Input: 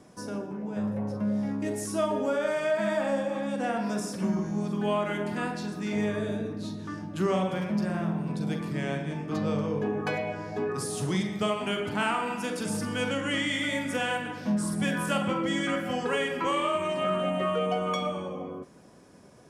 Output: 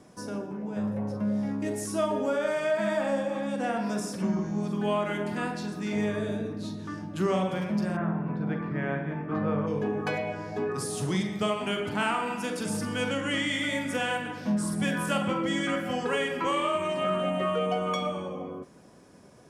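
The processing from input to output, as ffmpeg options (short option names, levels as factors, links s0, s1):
-filter_complex "[0:a]asettb=1/sr,asplit=3[s0][s1][s2];[s0]atrim=end=4.224[s3];[s1]atrim=start=4.22:end=4.63,asetpts=PTS-STARTPTS,afade=t=in:d=0.004:c=qsin,afade=t=out:st=0.406:d=0.004:c=qsin,lowpass=7300[s4];[s2]atrim=start=4.626[s5];[s3][s4]acrossfade=d=0.004:c1=hsin:c2=qsin[s6];[s6][s5]acrossfade=d=0.004:c1=qsin:c2=hsin,asplit=3[s7][s8][s9];[s7]afade=t=out:st=7.96:d=0.02[s10];[s8]lowpass=f=1600:t=q:w=1.6,afade=t=in:st=7.96:d=0.02,afade=t=out:st=9.66:d=0.02[s11];[s9]afade=t=in:st=9.66:d=0.02[s12];[s10][s11][s12]amix=inputs=3:normalize=0"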